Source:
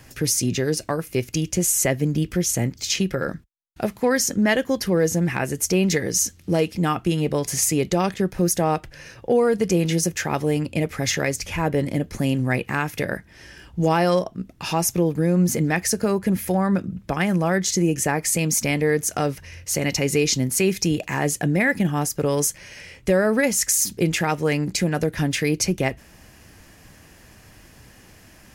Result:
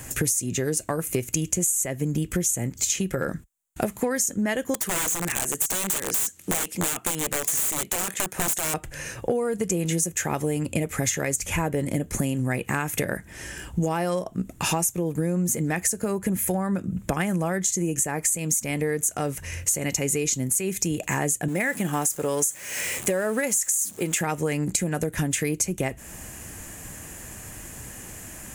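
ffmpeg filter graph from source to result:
ffmpeg -i in.wav -filter_complex "[0:a]asettb=1/sr,asplit=3[link_01][link_02][link_03];[link_01]atrim=end=4.744[link_04];[link_02]atrim=start=4.74:end=8.74,asetpts=PTS-STARTPTS,afade=type=in:duration=0.004:curve=qsin,afade=type=out:start_time=3.996:duration=0.004:curve=qsin,highpass=frequency=470:poles=1,aeval=exprs='(mod(11.9*val(0)+1,2)-1)/11.9':channel_layout=same[link_05];[link_03]atrim=start=8.736[link_06];[link_04][link_05]acrossfade=duration=0.004:curve1=hsin:curve2=qsin[link_07];[link_07][link_06]acrossfade=duration=0.004:curve1=qsin:curve2=hsin,asettb=1/sr,asplit=3[link_08][link_09][link_10];[link_08]atrim=end=21.484[link_11];[link_09]atrim=start=21.48:end=24.21,asetpts=PTS-STARTPTS,afade=type=in:duration=0.004:curve=qsin,afade=type=out:start_time=2.726:duration=0.004:curve=qsin,aeval=exprs='val(0)+0.5*0.0188*sgn(val(0))':channel_layout=same,highpass=frequency=330:poles=1[link_12];[link_10]atrim=start=24.206[link_13];[link_11][link_12]acrossfade=duration=0.004:curve1=hsin:curve2=qsin[link_14];[link_14][link_13]acrossfade=duration=0.004:curve1=qsin:curve2=hsin,highshelf=frequency=6100:width_type=q:width=3:gain=6.5,acompressor=threshold=-28dB:ratio=12,volume=6.5dB" out.wav

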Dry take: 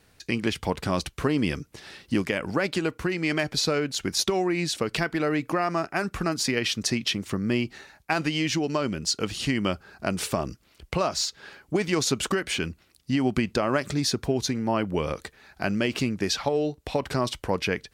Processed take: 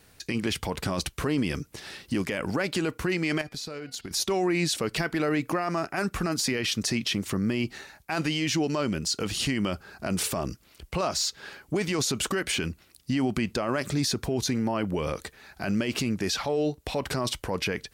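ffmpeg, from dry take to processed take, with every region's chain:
ffmpeg -i in.wav -filter_complex "[0:a]asettb=1/sr,asplit=3[link_01][link_02][link_03];[link_01]atrim=end=3.414[link_04];[link_02]atrim=start=3.41:end=4.11,asetpts=PTS-STARTPTS,afade=type=in:duration=0.004:curve=qsin,afade=type=out:start_time=0.696:duration=0.004:curve=qsin,bandreject=frequency=241.7:width_type=h:width=4,bandreject=frequency=483.4:width_type=h:width=4,bandreject=frequency=725.1:width_type=h:width=4,bandreject=frequency=966.8:width_type=h:width=4,bandreject=frequency=1208.5:width_type=h:width=4,bandreject=frequency=1450.2:width_type=h:width=4,bandreject=frequency=1691.9:width_type=h:width=4,bandreject=frequency=1933.6:width_type=h:width=4,bandreject=frequency=2175.3:width_type=h:width=4,bandreject=frequency=2417:width_type=h:width=4,bandreject=frequency=2658.7:width_type=h:width=4,bandreject=frequency=2900.4:width_type=h:width=4,bandreject=frequency=3142.1:width_type=h:width=4,bandreject=frequency=3383.8:width_type=h:width=4,bandreject=frequency=3625.5:width_type=h:width=4,bandreject=frequency=3867.2:width_type=h:width=4,bandreject=frequency=4108.9:width_type=h:width=4,bandreject=frequency=4350.6:width_type=h:width=4,bandreject=frequency=4592.3:width_type=h:width=4,bandreject=frequency=4834:width_type=h:width=4,bandreject=frequency=5075.7:width_type=h:width=4,bandreject=frequency=5317.4:width_type=h:width=4,agate=range=-10dB:threshold=-35dB:ratio=16:release=100:detection=peak,acompressor=threshold=-36dB:ratio=10:attack=3.2:release=140:knee=1:detection=peak[link_05];[link_03]atrim=start=4.106[link_06];[link_04][link_05]acrossfade=duration=0.004:curve1=hsin:curve2=qsin[link_07];[link_07][link_06]acrossfade=duration=0.004:curve1=qsin:curve2=hsin,highshelf=frequency=8300:gain=7,alimiter=limit=-20dB:level=0:latency=1:release=17,volume=2dB" out.wav

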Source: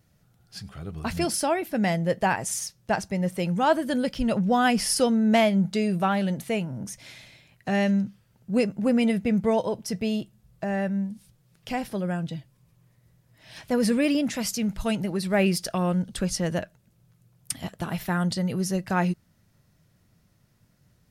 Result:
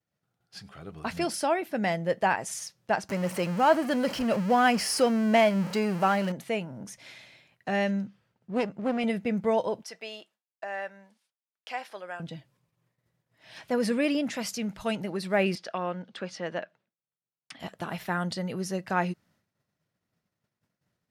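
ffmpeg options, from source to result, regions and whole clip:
ffmpeg -i in.wav -filter_complex "[0:a]asettb=1/sr,asplit=3[link_01][link_02][link_03];[link_01]atrim=end=3.094[link_04];[link_02]atrim=start=3.09:end=6.32,asetpts=PTS-STARTPTS,afade=type=in:duration=0.004:curve=qsin,afade=type=out:start_time=3.226:duration=0.004:curve=qsin,aeval=exprs='val(0)+0.5*0.0398*sgn(val(0))':channel_layout=same,bandreject=frequency=3600:width=7.1[link_05];[link_03]atrim=start=6.316[link_06];[link_04][link_05]acrossfade=duration=0.004:curve1=hsin:curve2=qsin[link_07];[link_07][link_06]acrossfade=duration=0.004:curve1=qsin:curve2=hsin,asettb=1/sr,asplit=3[link_08][link_09][link_10];[link_08]atrim=end=8.064[link_11];[link_09]atrim=start=8.06:end=9.04,asetpts=PTS-STARTPTS,afade=type=in:duration=0.004:curve=qsin,afade=type=out:start_time=0.976:duration=0.004:curve=qsin,highshelf=frequency=7400:gain=-10.5,aeval=exprs='clip(val(0),-1,0.0355)':channel_layout=same[link_12];[link_10]atrim=start=9.036[link_13];[link_11][link_12]acrossfade=duration=0.004:curve1=hsin:curve2=qsin[link_14];[link_14][link_13]acrossfade=duration=0.004:curve1=qsin:curve2=hsin,asettb=1/sr,asplit=3[link_15][link_16][link_17];[link_15]atrim=end=9.834[link_18];[link_16]atrim=start=9.83:end=12.2,asetpts=PTS-STARTPTS,afade=type=in:duration=0.004:curve=qsin,afade=type=out:start_time=2.366:duration=0.004:curve=qsin,highpass=730,highshelf=frequency=9700:gain=-8.5[link_19];[link_17]atrim=start=12.196[link_20];[link_18][link_19]acrossfade=duration=0.004:curve1=hsin:curve2=qsin[link_21];[link_21][link_20]acrossfade=duration=0.004:curve1=qsin:curve2=hsin,asettb=1/sr,asplit=3[link_22][link_23][link_24];[link_22]atrim=end=15.554[link_25];[link_23]atrim=start=15.55:end=17.6,asetpts=PTS-STARTPTS,afade=type=in:duration=0.004:curve=qsin,afade=type=out:start_time=2.046:duration=0.004:curve=qsin,highpass=170,lowpass=3700,lowshelf=frequency=430:gain=-5.5[link_26];[link_24]atrim=start=17.596[link_27];[link_25][link_26]acrossfade=duration=0.004:curve1=hsin:curve2=qsin[link_28];[link_28][link_27]acrossfade=duration=0.004:curve1=qsin:curve2=hsin,agate=range=-33dB:threshold=-54dB:ratio=3:detection=peak,highpass=frequency=380:poles=1,aemphasis=mode=reproduction:type=cd" out.wav

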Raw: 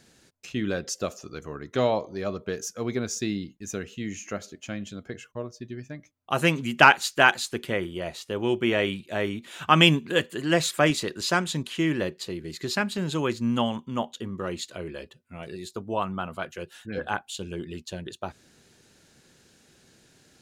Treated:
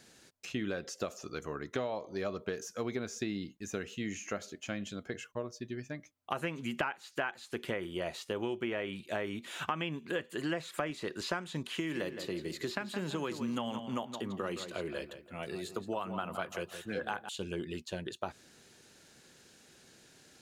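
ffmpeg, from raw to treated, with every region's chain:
ffmpeg -i in.wav -filter_complex "[0:a]asettb=1/sr,asplit=3[link_01][link_02][link_03];[link_01]atrim=end=11.734[link_04];[link_02]atrim=start=11.73:end=17.29,asetpts=PTS-STARTPTS,afade=type=in:duration=0.004:curve=qsin,afade=type=out:start_time=5.556:duration=0.004:curve=qsin,highshelf=frequency=11000:gain=7,acrossover=split=130|3600[link_05][link_06][link_07];[link_05]acompressor=threshold=-49dB:ratio=4[link_08];[link_06]acompressor=threshold=-27dB:ratio=4[link_09];[link_07]acompressor=threshold=-41dB:ratio=4[link_10];[link_08][link_09][link_10]amix=inputs=3:normalize=0,asplit=2[link_11][link_12];[link_12]adelay=167,lowpass=frequency=2800:poles=1,volume=-11dB,asplit=2[link_13][link_14];[link_14]adelay=167,lowpass=frequency=2800:poles=1,volume=0.37,asplit=2[link_15][link_16];[link_16]adelay=167,lowpass=frequency=2800:poles=1,volume=0.37,asplit=2[link_17][link_18];[link_18]adelay=167,lowpass=frequency=2800:poles=1,volume=0.37[link_19];[link_11][link_13][link_15][link_17][link_19]amix=inputs=5:normalize=0,atrim=end_sample=245196[link_20];[link_03]atrim=start=17.286[link_21];[link_04][link_20]acrossfade=duration=0.004:curve1=hsin:curve2=qsin[link_22];[link_22][link_21]acrossfade=duration=0.004:curve1=qsin:curve2=hsin,acrossover=split=2700[link_23][link_24];[link_24]acompressor=threshold=-42dB:ratio=4:attack=1:release=60[link_25];[link_23][link_25]amix=inputs=2:normalize=0,lowshelf=frequency=220:gain=-7,acompressor=threshold=-31dB:ratio=16" out.wav

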